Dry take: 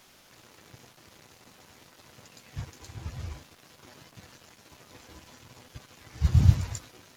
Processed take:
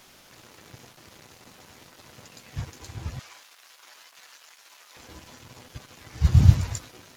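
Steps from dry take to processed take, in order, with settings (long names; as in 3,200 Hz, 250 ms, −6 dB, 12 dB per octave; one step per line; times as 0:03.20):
0:03.19–0:04.97: high-pass filter 1,000 Hz 12 dB per octave
level +4 dB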